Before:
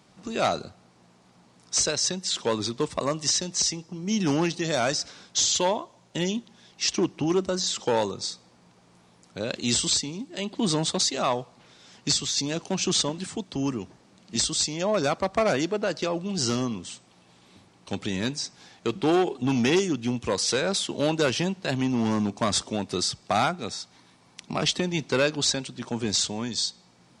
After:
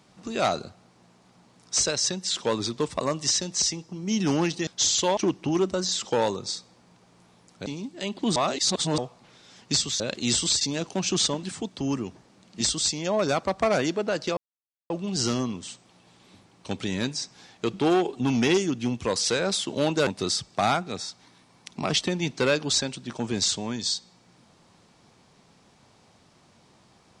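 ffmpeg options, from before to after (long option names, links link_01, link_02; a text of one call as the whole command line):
ffmpeg -i in.wav -filter_complex "[0:a]asplit=10[link_01][link_02][link_03][link_04][link_05][link_06][link_07][link_08][link_09][link_10];[link_01]atrim=end=4.672[link_11];[link_02]atrim=start=5.238:end=5.742[link_12];[link_03]atrim=start=6.918:end=9.412[link_13];[link_04]atrim=start=10.018:end=10.722[link_14];[link_05]atrim=start=10.718:end=11.342,asetpts=PTS-STARTPTS,areverse[link_15];[link_06]atrim=start=11.338:end=12.362[link_16];[link_07]atrim=start=9.408:end=10.022[link_17];[link_08]atrim=start=12.358:end=16.12,asetpts=PTS-STARTPTS,afade=type=out:start_time=3.758:duration=0.004:curve=hsin,apad=pad_dur=0.53[link_18];[link_09]atrim=start=16.12:end=21.292,asetpts=PTS-STARTPTS,afade=type=in:duration=0.004:curve=hsin[link_19];[link_10]atrim=start=22.788[link_20];[link_11][link_12]acrossfade=duration=0.004:curve1=hsin:curve2=hsin[link_21];[link_21][link_13]acrossfade=duration=0.004:curve1=hsin:curve2=hsin[link_22];[link_22][link_14]acrossfade=duration=0.004:curve1=hsin:curve2=hsin[link_23];[link_23][link_15]acrossfade=duration=0.004:curve1=hsin:curve2=hsin[link_24];[link_24][link_16]acrossfade=duration=0.004:curve1=hsin:curve2=hsin[link_25];[link_25][link_17]acrossfade=duration=0.004:curve1=hsin:curve2=hsin[link_26];[link_18][link_19]concat=n=2:v=0:a=1[link_27];[link_26][link_27]acrossfade=duration=0.004:curve1=hsin:curve2=hsin[link_28];[link_28][link_20]acrossfade=duration=0.004:curve1=hsin:curve2=hsin" out.wav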